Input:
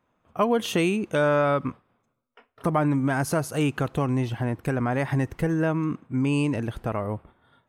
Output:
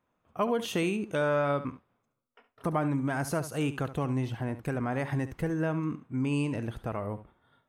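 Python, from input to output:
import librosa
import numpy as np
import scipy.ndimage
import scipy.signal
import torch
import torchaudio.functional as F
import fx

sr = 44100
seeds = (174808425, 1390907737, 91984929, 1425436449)

y = x + 10.0 ** (-13.5 / 20.0) * np.pad(x, (int(70 * sr / 1000.0), 0))[:len(x)]
y = y * 10.0 ** (-6.0 / 20.0)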